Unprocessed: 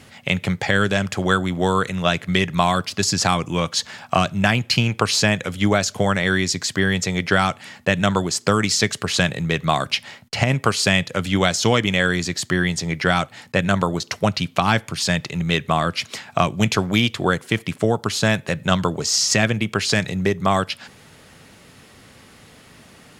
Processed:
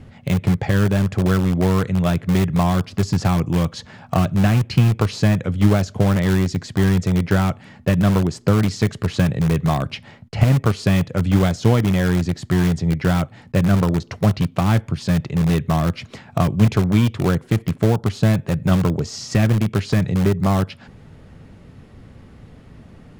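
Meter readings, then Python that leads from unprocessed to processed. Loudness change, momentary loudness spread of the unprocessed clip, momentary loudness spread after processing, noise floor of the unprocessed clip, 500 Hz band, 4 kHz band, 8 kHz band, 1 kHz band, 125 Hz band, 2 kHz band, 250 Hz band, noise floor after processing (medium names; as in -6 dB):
+1.0 dB, 5 LU, 5 LU, -48 dBFS, -1.0 dB, -10.0 dB, -10.5 dB, -4.5 dB, +7.0 dB, -8.0 dB, +4.0 dB, -46 dBFS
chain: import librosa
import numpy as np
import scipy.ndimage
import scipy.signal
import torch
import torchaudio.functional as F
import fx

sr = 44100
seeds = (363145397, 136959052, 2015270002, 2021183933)

p1 = fx.tilt_eq(x, sr, slope=-4.0)
p2 = (np.mod(10.0 ** (8.0 / 20.0) * p1 + 1.0, 2.0) - 1.0) / 10.0 ** (8.0 / 20.0)
p3 = p1 + (p2 * librosa.db_to_amplitude(-12.0))
y = p3 * librosa.db_to_amplitude(-5.5)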